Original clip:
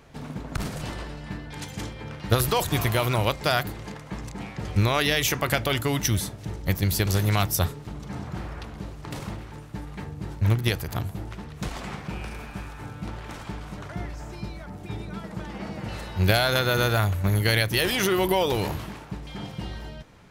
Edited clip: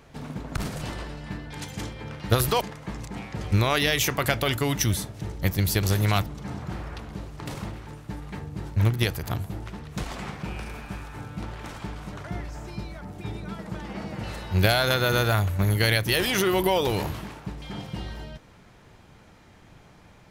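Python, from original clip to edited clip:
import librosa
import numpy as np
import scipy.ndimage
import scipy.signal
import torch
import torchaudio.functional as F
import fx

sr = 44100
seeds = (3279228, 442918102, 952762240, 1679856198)

y = fx.edit(x, sr, fx.cut(start_s=2.61, length_s=1.24),
    fx.cut(start_s=7.5, length_s=0.41), tone=tone)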